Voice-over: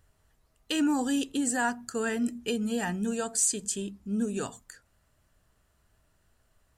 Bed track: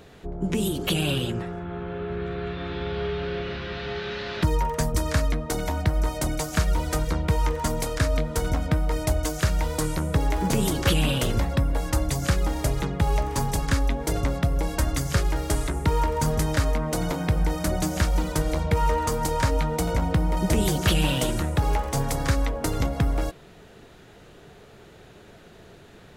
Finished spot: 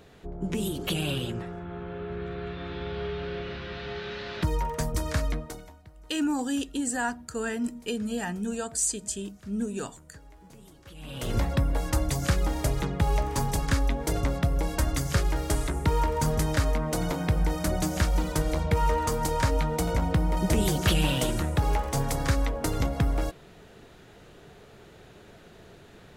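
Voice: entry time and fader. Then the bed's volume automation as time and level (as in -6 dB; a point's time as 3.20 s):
5.40 s, -1.0 dB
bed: 5.38 s -4.5 dB
5.81 s -28 dB
10.90 s -28 dB
11.35 s -2 dB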